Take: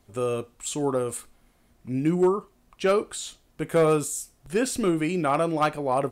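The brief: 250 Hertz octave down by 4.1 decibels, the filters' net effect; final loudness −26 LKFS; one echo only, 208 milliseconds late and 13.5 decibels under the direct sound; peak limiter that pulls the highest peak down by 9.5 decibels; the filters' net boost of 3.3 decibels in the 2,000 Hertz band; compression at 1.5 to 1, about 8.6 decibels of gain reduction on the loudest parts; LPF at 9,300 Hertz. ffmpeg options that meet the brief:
ffmpeg -i in.wav -af "lowpass=9300,equalizer=frequency=250:width_type=o:gain=-6.5,equalizer=frequency=2000:width_type=o:gain=4.5,acompressor=threshold=-42dB:ratio=1.5,alimiter=level_in=4dB:limit=-24dB:level=0:latency=1,volume=-4dB,aecho=1:1:208:0.211,volume=11.5dB" out.wav

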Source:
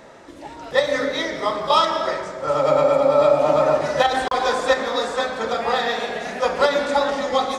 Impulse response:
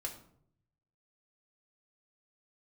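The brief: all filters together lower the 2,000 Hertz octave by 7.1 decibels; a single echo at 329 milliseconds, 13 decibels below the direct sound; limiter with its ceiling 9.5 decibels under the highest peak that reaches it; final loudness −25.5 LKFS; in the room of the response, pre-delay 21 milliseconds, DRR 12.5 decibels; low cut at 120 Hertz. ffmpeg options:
-filter_complex "[0:a]highpass=120,equalizer=frequency=2000:width_type=o:gain=-9,alimiter=limit=-14dB:level=0:latency=1,aecho=1:1:329:0.224,asplit=2[link_01][link_02];[1:a]atrim=start_sample=2205,adelay=21[link_03];[link_02][link_03]afir=irnorm=-1:irlink=0,volume=-12dB[link_04];[link_01][link_04]amix=inputs=2:normalize=0,volume=-2dB"

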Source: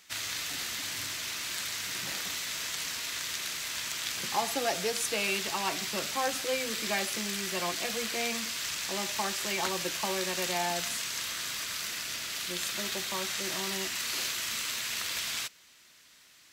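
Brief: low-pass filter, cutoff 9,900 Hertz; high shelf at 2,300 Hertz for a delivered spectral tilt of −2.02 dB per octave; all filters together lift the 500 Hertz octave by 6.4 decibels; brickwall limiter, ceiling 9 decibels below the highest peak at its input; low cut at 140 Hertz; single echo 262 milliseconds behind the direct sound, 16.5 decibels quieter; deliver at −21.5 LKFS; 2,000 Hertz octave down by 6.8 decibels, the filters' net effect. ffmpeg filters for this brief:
ffmpeg -i in.wav -af "highpass=140,lowpass=9900,equalizer=frequency=500:width_type=o:gain=8.5,equalizer=frequency=2000:width_type=o:gain=-6,highshelf=frequency=2300:gain=-5.5,alimiter=level_in=1dB:limit=-24dB:level=0:latency=1,volume=-1dB,aecho=1:1:262:0.15,volume=14.5dB" out.wav

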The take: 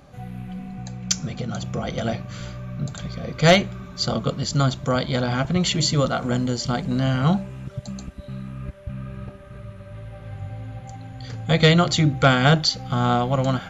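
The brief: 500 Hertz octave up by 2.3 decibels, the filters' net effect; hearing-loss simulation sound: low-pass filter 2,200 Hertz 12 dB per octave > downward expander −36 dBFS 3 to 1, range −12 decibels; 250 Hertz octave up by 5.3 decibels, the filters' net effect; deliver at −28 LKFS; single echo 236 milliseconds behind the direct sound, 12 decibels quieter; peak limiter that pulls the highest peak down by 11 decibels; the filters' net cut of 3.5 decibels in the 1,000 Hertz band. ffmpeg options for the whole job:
ffmpeg -i in.wav -af "equalizer=frequency=250:width_type=o:gain=7,equalizer=frequency=500:width_type=o:gain=3.5,equalizer=frequency=1000:width_type=o:gain=-8,alimiter=limit=-11.5dB:level=0:latency=1,lowpass=2200,aecho=1:1:236:0.251,agate=range=-12dB:threshold=-36dB:ratio=3,volume=-4.5dB" out.wav

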